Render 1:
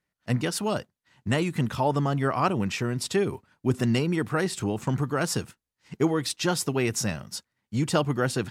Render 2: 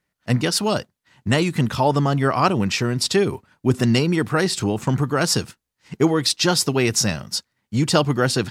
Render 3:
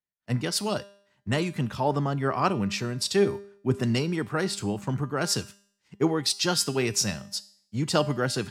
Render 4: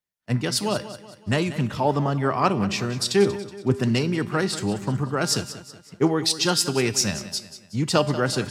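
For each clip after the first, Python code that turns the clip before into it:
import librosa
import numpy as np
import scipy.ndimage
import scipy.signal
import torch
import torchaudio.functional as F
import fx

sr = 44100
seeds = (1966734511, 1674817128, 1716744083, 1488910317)

y1 = fx.dynamic_eq(x, sr, hz=4700.0, q=1.6, threshold_db=-48.0, ratio=4.0, max_db=7)
y1 = F.gain(torch.from_numpy(y1), 6.0).numpy()
y2 = fx.comb_fb(y1, sr, f0_hz=200.0, decay_s=0.72, harmonics='all', damping=0.0, mix_pct=60)
y2 = fx.band_widen(y2, sr, depth_pct=40)
y3 = fx.echo_feedback(y2, sr, ms=186, feedback_pct=45, wet_db=-14)
y3 = fx.doppler_dist(y3, sr, depth_ms=0.11)
y3 = F.gain(torch.from_numpy(y3), 3.5).numpy()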